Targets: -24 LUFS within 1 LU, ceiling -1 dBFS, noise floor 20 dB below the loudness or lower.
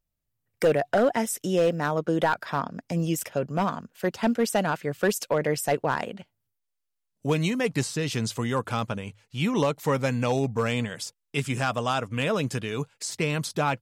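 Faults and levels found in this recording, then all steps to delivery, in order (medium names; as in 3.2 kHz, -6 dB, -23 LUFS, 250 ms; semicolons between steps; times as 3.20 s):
clipped samples 0.5%; clipping level -15.0 dBFS; loudness -27.0 LUFS; peak level -15.0 dBFS; loudness target -24.0 LUFS
-> clip repair -15 dBFS; trim +3 dB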